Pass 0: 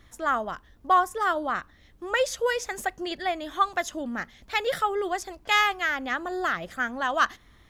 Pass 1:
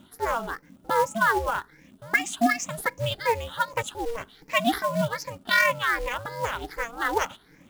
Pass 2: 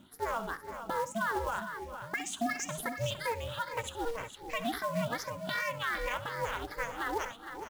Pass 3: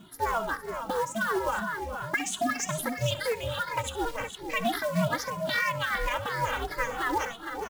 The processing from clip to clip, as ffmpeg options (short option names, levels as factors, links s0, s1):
-af "afftfilt=real='re*pow(10,19/40*sin(2*PI*(0.67*log(max(b,1)*sr/1024/100)/log(2)-(2.6)*(pts-256)/sr)))':imag='im*pow(10,19/40*sin(2*PI*(0.67*log(max(b,1)*sr/1024/100)/log(2)-(2.6)*(pts-256)/sr)))':win_size=1024:overlap=0.75,acrusher=bits=4:mode=log:mix=0:aa=0.000001,aeval=exprs='val(0)*sin(2*PI*230*n/s)':c=same"
-filter_complex "[0:a]alimiter=limit=0.126:level=0:latency=1:release=107,asplit=2[s0][s1];[s1]aecho=0:1:65|417|459:0.178|0.168|0.335[s2];[s0][s2]amix=inputs=2:normalize=0,volume=0.562"
-filter_complex "[0:a]asplit=2[s0][s1];[s1]alimiter=level_in=1.5:limit=0.0631:level=0:latency=1:release=235,volume=0.668,volume=0.841[s2];[s0][s2]amix=inputs=2:normalize=0,asplit=2[s3][s4];[s4]adelay=2.3,afreqshift=-3[s5];[s3][s5]amix=inputs=2:normalize=1,volume=1.78"